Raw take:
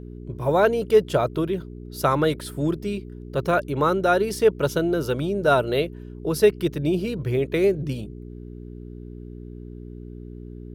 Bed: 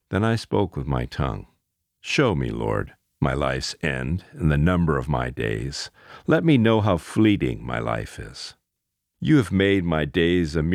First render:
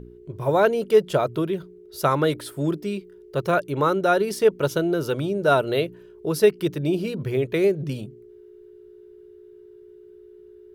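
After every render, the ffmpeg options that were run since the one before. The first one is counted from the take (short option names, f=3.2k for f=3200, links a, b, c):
-af "bandreject=f=60:t=h:w=4,bandreject=f=120:t=h:w=4,bandreject=f=180:t=h:w=4,bandreject=f=240:t=h:w=4,bandreject=f=300:t=h:w=4"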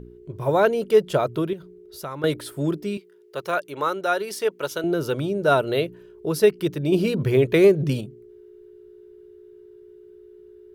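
-filter_complex "[0:a]asettb=1/sr,asplit=3[a][b][c];[a]atrim=end=1.534[d];[b]atrim=start=1.53:end=2.24,asetpts=PTS-STARTPTS,afade=t=in:d=0.004:c=qsin,afade=t=out:st=0.706:d=0.004:c=qsin,acompressor=threshold=-39dB:ratio=2:attack=3.2:release=140:knee=1:detection=peak[e];[c]atrim=start=2.236[f];[d][e]acrossfade=d=0.004:c1=hsin:c2=qsin[g];[g][f]acrossfade=d=0.004:c1=qsin:c2=hsin,asettb=1/sr,asplit=3[h][i][j];[h]atrim=end=2.974[k];[i]atrim=start=2.97:end=4.84,asetpts=PTS-STARTPTS,afade=t=in:d=0.004:c=qsin,afade=t=out:st=1.866:d=0.004:c=qsin,highpass=f=760:p=1[l];[j]atrim=start=4.836[m];[k][l]acrossfade=d=0.004:c1=hsin:c2=qsin[n];[n][m]acrossfade=d=0.004:c1=qsin:c2=hsin,asettb=1/sr,asplit=3[o][p][q];[o]atrim=end=6.924[r];[p]atrim=start=6.92:end=8.01,asetpts=PTS-STARTPTS,afade=t=in:d=0.004:c=qsin,afade=t=out:st=1.086:d=0.004:c=qsin,acontrast=39[s];[q]atrim=start=8.006[t];[r][s]acrossfade=d=0.004:c1=hsin:c2=qsin[u];[u][t]acrossfade=d=0.004:c1=qsin:c2=hsin"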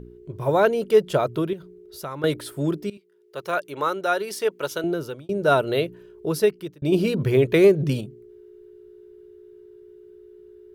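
-filter_complex "[0:a]asplit=4[a][b][c][d];[a]atrim=end=2.9,asetpts=PTS-STARTPTS,afade=t=out:st=2.896:d=0.004:c=hsin:silence=0.11885[e];[b]atrim=start=2.9:end=5.29,asetpts=PTS-STARTPTS,afade=t=in:d=0.7:silence=0.11885,afade=t=out:st=1.92:d=0.47[f];[c]atrim=start=5.29:end=6.82,asetpts=PTS-STARTPTS,afade=t=in:d=0.004:c=hsin,afade=t=out:st=1.03:d=0.5[g];[d]atrim=start=6.82,asetpts=PTS-STARTPTS,afade=t=in:d=0.004:c=hsin[h];[e][f][g][h]concat=n=4:v=0:a=1"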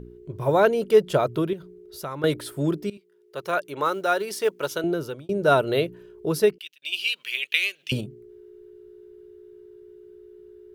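-filter_complex "[0:a]asettb=1/sr,asplit=3[a][b][c];[a]atrim=end=3.854[d];[b]atrim=start=3.85:end=4.76,asetpts=PTS-STARTPTS,afade=t=in:d=0.004:c=qsin,afade=t=out:st=0.906:d=0.004:c=qsin,acrusher=bits=8:mode=log:mix=0:aa=0.000001[e];[c]atrim=start=4.756[f];[d][e]acrossfade=d=0.004:c1=hsin:c2=qsin[g];[g][f]acrossfade=d=0.004:c1=qsin:c2=hsin,asettb=1/sr,asplit=3[h][i][j];[h]atrim=end=6.584[k];[i]atrim=start=6.58:end=7.92,asetpts=PTS-STARTPTS,afade=t=in:d=0.004:c=qsin,afade=t=out:st=1.336:d=0.004:c=qsin,highpass=f=2.8k:t=q:w=4.6[l];[j]atrim=start=7.916[m];[k][l]acrossfade=d=0.004:c1=hsin:c2=qsin[n];[n][m]acrossfade=d=0.004:c1=qsin:c2=hsin"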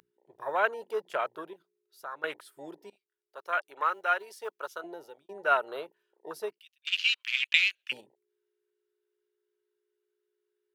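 -af "afwtdn=0.0282,highpass=1.1k"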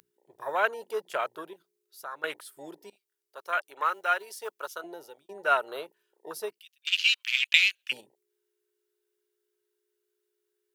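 -af "highshelf=f=4.3k:g=10"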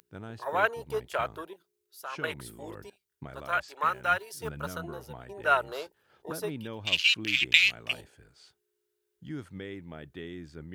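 -filter_complex "[1:a]volume=-21.5dB[a];[0:a][a]amix=inputs=2:normalize=0"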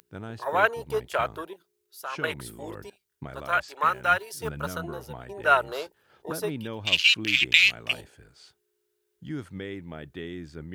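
-af "volume=4dB,alimiter=limit=-2dB:level=0:latency=1"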